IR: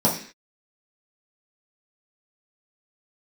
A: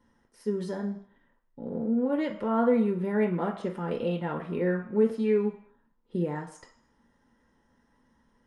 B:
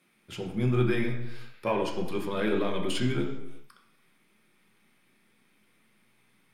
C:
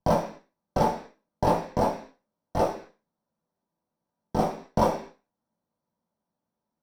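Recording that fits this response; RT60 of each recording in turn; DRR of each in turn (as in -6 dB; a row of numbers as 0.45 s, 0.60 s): C; no single decay rate, no single decay rate, 0.45 s; 1.0 dB, 1.0 dB, -5.5 dB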